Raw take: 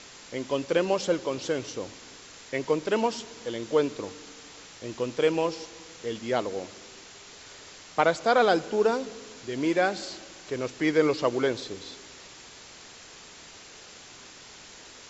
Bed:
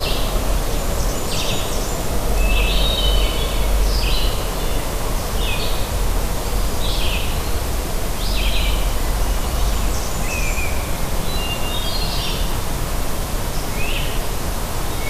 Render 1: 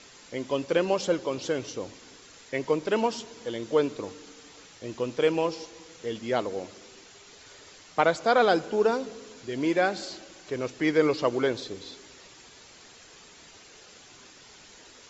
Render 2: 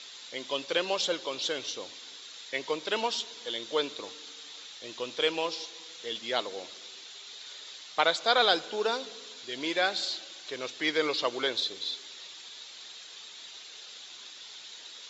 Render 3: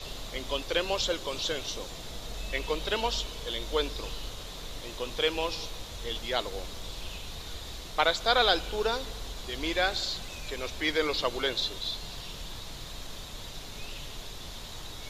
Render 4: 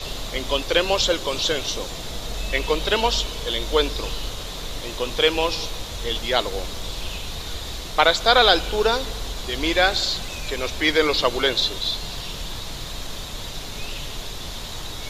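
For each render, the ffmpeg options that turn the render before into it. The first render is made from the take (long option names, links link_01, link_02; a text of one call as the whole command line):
ffmpeg -i in.wav -af "afftdn=noise_reduction=6:noise_floor=-48" out.wav
ffmpeg -i in.wav -af "highpass=frequency=900:poles=1,equalizer=frequency=3700:width=2.5:gain=13.5" out.wav
ffmpeg -i in.wav -i bed.wav -filter_complex "[1:a]volume=-21dB[link_01];[0:a][link_01]amix=inputs=2:normalize=0" out.wav
ffmpeg -i in.wav -af "volume=9dB,alimiter=limit=-2dB:level=0:latency=1" out.wav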